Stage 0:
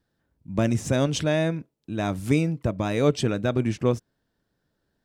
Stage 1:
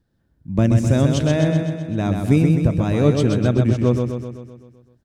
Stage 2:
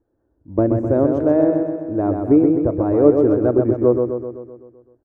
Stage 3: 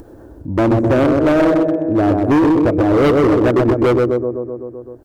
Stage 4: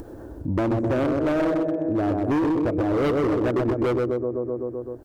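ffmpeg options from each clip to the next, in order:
ffmpeg -i in.wav -filter_complex "[0:a]lowshelf=frequency=330:gain=10.5,asplit=2[link_01][link_02];[link_02]aecho=0:1:128|256|384|512|640|768|896|1024:0.562|0.321|0.183|0.104|0.0594|0.0338|0.0193|0.011[link_03];[link_01][link_03]amix=inputs=2:normalize=0,volume=-1dB" out.wav
ffmpeg -i in.wav -af "firequalizer=gain_entry='entry(100,0);entry(170,-11);entry(310,13);entry(1200,4);entry(3000,-26)':delay=0.05:min_phase=1,volume=-5dB" out.wav
ffmpeg -i in.wav -filter_complex "[0:a]asplit=2[link_01][link_02];[link_02]acompressor=mode=upward:threshold=-18dB:ratio=2.5,volume=-0.5dB[link_03];[link_01][link_03]amix=inputs=2:normalize=0,asoftclip=type=hard:threshold=-11.5dB,volume=1.5dB" out.wav
ffmpeg -i in.wav -af "acompressor=threshold=-22dB:ratio=5" out.wav

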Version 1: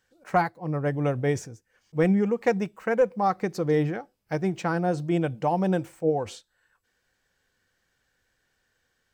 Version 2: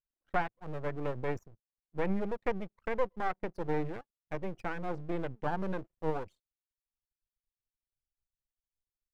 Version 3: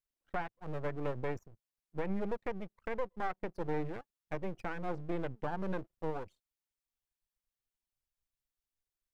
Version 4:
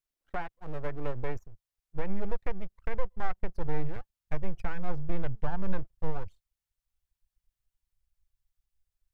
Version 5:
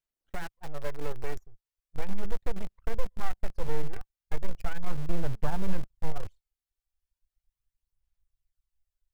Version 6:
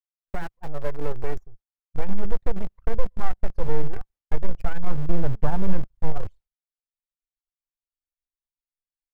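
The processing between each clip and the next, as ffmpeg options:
ffmpeg -i in.wav -filter_complex "[0:a]anlmdn=6.31,aeval=exprs='max(val(0),0)':channel_layout=same,acrossover=split=2900[link_01][link_02];[link_02]acompressor=threshold=-54dB:ratio=4:attack=1:release=60[link_03];[link_01][link_03]amix=inputs=2:normalize=0,volume=-5dB" out.wav
ffmpeg -i in.wav -af "alimiter=limit=-24dB:level=0:latency=1:release=309" out.wav
ffmpeg -i in.wav -af "asubboost=boost=9.5:cutoff=93,volume=1dB" out.wav
ffmpeg -i in.wav -filter_complex "[0:a]aphaser=in_gain=1:out_gain=1:delay=2.6:decay=0.44:speed=0.37:type=sinusoidal,asplit=2[link_01][link_02];[link_02]acrusher=bits=4:mix=0:aa=0.000001,volume=-7dB[link_03];[link_01][link_03]amix=inputs=2:normalize=0,volume=-6dB" out.wav
ffmpeg -i in.wav -af "agate=range=-33dB:threshold=-45dB:ratio=3:detection=peak,highshelf=frequency=2100:gain=-11.5,volume=7dB" out.wav

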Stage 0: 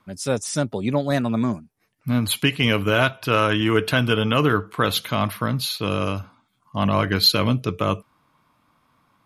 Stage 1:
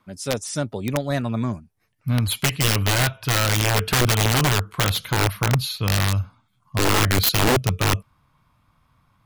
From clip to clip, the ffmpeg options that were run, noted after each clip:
ffmpeg -i in.wav -af "asubboost=boost=7:cutoff=110,aeval=exprs='(mod(3.55*val(0)+1,2)-1)/3.55':channel_layout=same,volume=-2dB" out.wav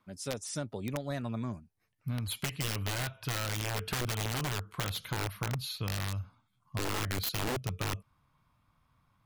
ffmpeg -i in.wav -af "acompressor=threshold=-23dB:ratio=6,volume=-8.5dB" out.wav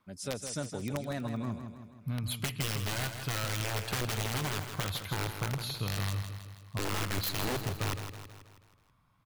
ffmpeg -i in.wav -af "aecho=1:1:161|322|483|644|805|966:0.376|0.195|0.102|0.0528|0.0275|0.0143" out.wav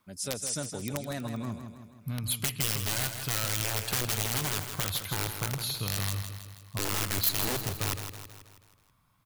ffmpeg -i in.wav -af "highshelf=frequency=5100:gain=11" out.wav

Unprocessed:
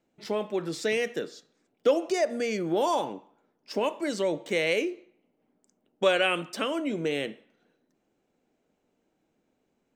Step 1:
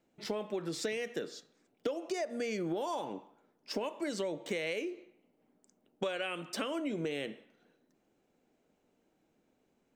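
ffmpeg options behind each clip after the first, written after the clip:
ffmpeg -i in.wav -af "acompressor=threshold=-32dB:ratio=10" out.wav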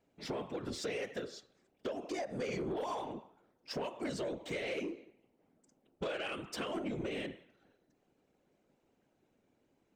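ffmpeg -i in.wav -af "highshelf=frequency=8500:gain=-7.5,afftfilt=real='hypot(re,im)*cos(2*PI*random(0))':imag='hypot(re,im)*sin(2*PI*random(1))':win_size=512:overlap=0.75,asoftclip=type=tanh:threshold=-36dB,volume=5.5dB" out.wav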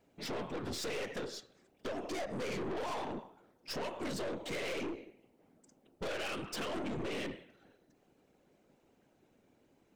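ffmpeg -i in.wav -af "aeval=exprs='(tanh(141*val(0)+0.45)-tanh(0.45))/141':channel_layout=same,volume=7dB" out.wav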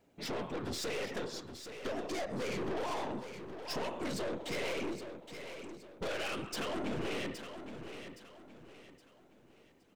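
ffmpeg -i in.wav -af "aecho=1:1:818|1636|2454|3272:0.335|0.117|0.041|0.0144,volume=1dB" out.wav

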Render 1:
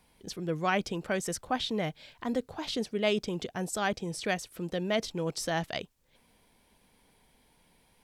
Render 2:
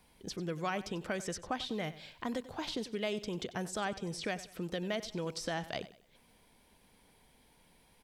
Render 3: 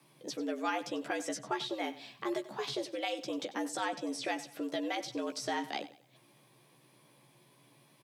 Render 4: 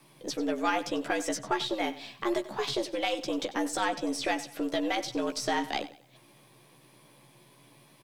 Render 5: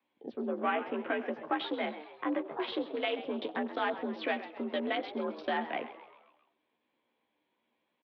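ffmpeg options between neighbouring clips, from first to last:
ffmpeg -i in.wav -filter_complex "[0:a]acrossover=split=1200|6900[link_01][link_02][link_03];[link_01]acompressor=threshold=-35dB:ratio=4[link_04];[link_02]acompressor=threshold=-40dB:ratio=4[link_05];[link_03]acompressor=threshold=-57dB:ratio=4[link_06];[link_04][link_05][link_06]amix=inputs=3:normalize=0,aecho=1:1:94|188|282:0.158|0.0555|0.0194" out.wav
ffmpeg -i in.wav -filter_complex "[0:a]afreqshift=110,asplit=2[link_01][link_02];[link_02]adelay=14,volume=-5dB[link_03];[link_01][link_03]amix=inputs=2:normalize=0" out.wav
ffmpeg -i in.wav -af "aeval=exprs='if(lt(val(0),0),0.708*val(0),val(0))':channel_layout=same,volume=7dB" out.wav
ffmpeg -i in.wav -filter_complex "[0:a]afwtdn=0.01,asplit=6[link_01][link_02][link_03][link_04][link_05][link_06];[link_02]adelay=132,afreqshift=89,volume=-14.5dB[link_07];[link_03]adelay=264,afreqshift=178,volume=-20.3dB[link_08];[link_04]adelay=396,afreqshift=267,volume=-26.2dB[link_09];[link_05]adelay=528,afreqshift=356,volume=-32dB[link_10];[link_06]adelay=660,afreqshift=445,volume=-37.9dB[link_11];[link_01][link_07][link_08][link_09][link_10][link_11]amix=inputs=6:normalize=0,highpass=frequency=290:width_type=q:width=0.5412,highpass=frequency=290:width_type=q:width=1.307,lowpass=frequency=3600:width_type=q:width=0.5176,lowpass=frequency=3600:width_type=q:width=0.7071,lowpass=frequency=3600:width_type=q:width=1.932,afreqshift=-54,volume=-2.5dB" out.wav

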